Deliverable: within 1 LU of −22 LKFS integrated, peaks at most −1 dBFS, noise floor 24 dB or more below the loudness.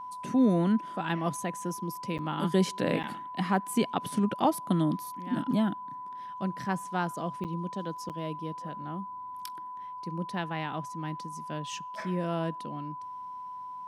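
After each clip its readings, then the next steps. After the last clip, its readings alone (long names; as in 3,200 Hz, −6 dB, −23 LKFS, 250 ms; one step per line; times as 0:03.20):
number of dropouts 4; longest dropout 8.0 ms; interfering tone 1,000 Hz; level of the tone −38 dBFS; integrated loudness −32.0 LKFS; sample peak −11.5 dBFS; target loudness −22.0 LKFS
→ repair the gap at 0:02.18/0:03.03/0:07.44/0:08.09, 8 ms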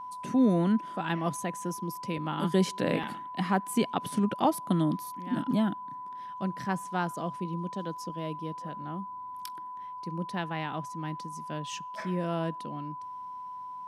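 number of dropouts 0; interfering tone 1,000 Hz; level of the tone −38 dBFS
→ notch filter 1,000 Hz, Q 30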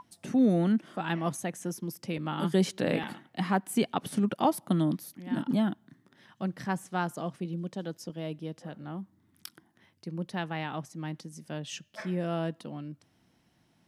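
interfering tone none found; integrated loudness −32.0 LKFS; sample peak −12.0 dBFS; target loudness −22.0 LKFS
→ level +10 dB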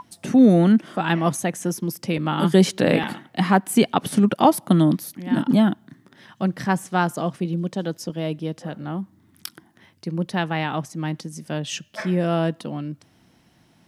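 integrated loudness −22.0 LKFS; sample peak −2.0 dBFS; background noise floor −59 dBFS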